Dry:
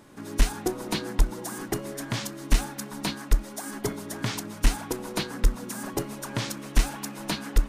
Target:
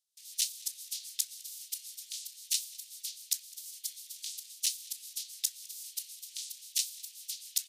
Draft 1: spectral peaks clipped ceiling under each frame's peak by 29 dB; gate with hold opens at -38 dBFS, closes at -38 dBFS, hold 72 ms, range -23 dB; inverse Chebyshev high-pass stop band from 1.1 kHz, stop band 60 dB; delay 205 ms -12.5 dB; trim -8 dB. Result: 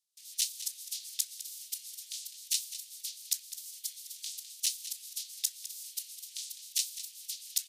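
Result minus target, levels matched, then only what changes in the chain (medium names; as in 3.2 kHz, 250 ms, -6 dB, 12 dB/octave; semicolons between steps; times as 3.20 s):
echo-to-direct +9.5 dB
change: delay 205 ms -22 dB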